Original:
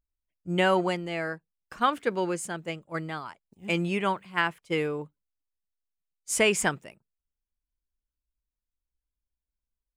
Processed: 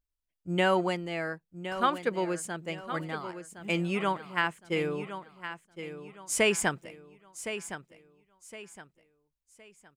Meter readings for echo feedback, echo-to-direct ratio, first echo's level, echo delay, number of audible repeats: 33%, -10.5 dB, -11.0 dB, 1.064 s, 3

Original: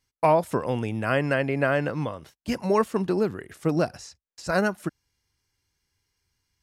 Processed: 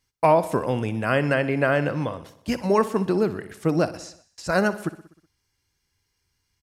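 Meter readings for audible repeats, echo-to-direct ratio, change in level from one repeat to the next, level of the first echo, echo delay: 5, -13.5 dB, -4.5 dB, -15.5 dB, 62 ms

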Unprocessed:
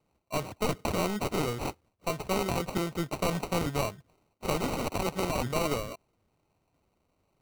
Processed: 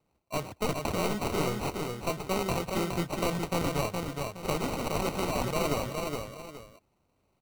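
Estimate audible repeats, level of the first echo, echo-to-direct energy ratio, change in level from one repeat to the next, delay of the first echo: 2, -4.0 dB, -3.5 dB, -10.0 dB, 0.417 s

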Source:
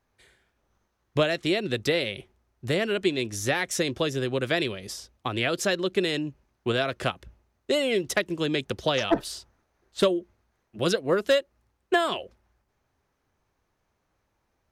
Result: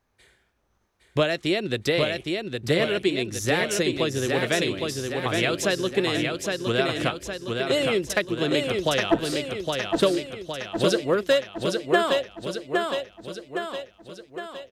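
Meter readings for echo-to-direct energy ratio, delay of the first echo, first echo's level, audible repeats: -2.5 dB, 0.813 s, -4.0 dB, 6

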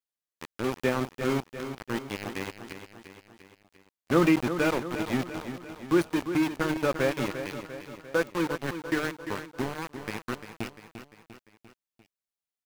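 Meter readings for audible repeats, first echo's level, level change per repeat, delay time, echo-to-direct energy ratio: 4, -10.0 dB, -5.0 dB, 0.347 s, -8.5 dB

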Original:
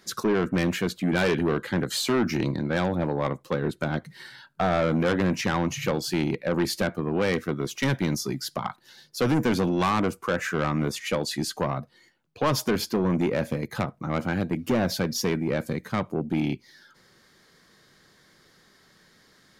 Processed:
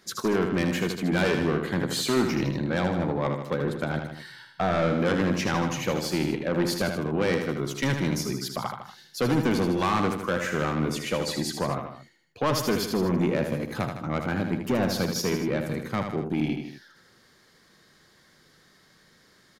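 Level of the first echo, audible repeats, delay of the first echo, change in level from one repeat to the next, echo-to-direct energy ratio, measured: -6.5 dB, 3, 78 ms, -4.5 dB, -5.0 dB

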